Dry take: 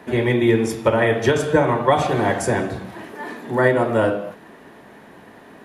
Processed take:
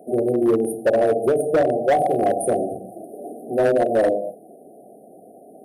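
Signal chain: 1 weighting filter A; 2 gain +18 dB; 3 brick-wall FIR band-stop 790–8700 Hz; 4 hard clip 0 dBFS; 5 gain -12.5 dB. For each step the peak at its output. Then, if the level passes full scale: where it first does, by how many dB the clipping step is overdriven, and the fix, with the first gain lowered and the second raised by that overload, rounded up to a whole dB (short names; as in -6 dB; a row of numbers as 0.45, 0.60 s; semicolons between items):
-5.5, +12.5, +8.5, 0.0, -12.5 dBFS; step 2, 8.5 dB; step 2 +9 dB, step 5 -3.5 dB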